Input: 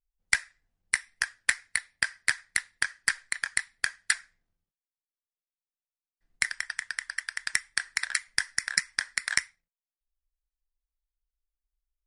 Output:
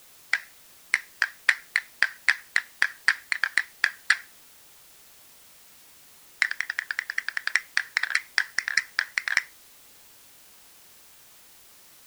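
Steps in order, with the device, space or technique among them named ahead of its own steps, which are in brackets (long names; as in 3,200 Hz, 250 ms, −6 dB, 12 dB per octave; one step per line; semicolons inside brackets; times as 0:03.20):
dictaphone (band-pass filter 350–4,000 Hz; automatic gain control; tape wow and flutter; white noise bed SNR 22 dB)
level −1 dB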